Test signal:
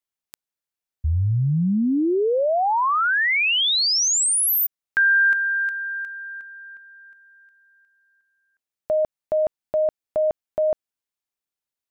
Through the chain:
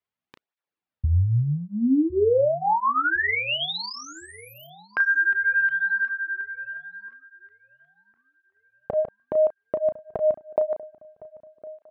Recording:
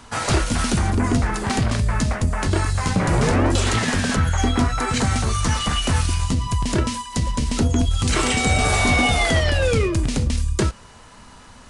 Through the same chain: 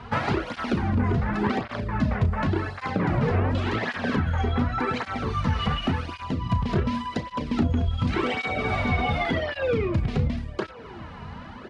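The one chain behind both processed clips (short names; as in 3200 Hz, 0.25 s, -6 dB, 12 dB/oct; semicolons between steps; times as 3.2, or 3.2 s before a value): compressor 10:1, threshold -25 dBFS; air absorption 340 m; doubler 34 ms -10 dB; on a send: darkening echo 1.057 s, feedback 39%, low-pass 2100 Hz, level -20 dB; on the sum: tape flanging out of phase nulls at 0.89 Hz, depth 3.7 ms; gain +8.5 dB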